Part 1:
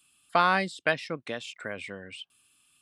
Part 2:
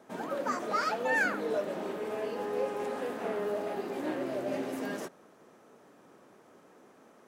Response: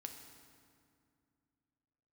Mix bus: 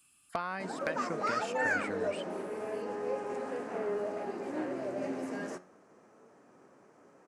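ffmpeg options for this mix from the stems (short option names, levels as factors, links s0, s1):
-filter_complex "[0:a]acompressor=threshold=0.0224:ratio=6,volume=1.06[s0];[1:a]lowpass=f=9200:w=0.5412,lowpass=f=9200:w=1.3066,flanger=delay=6.7:depth=5.2:regen=83:speed=0.31:shape=triangular,adelay=500,volume=1.33[s1];[s0][s1]amix=inputs=2:normalize=0,equalizer=f=3500:t=o:w=0.57:g=-9.5,aeval=exprs='0.126*(abs(mod(val(0)/0.126+3,4)-2)-1)':c=same"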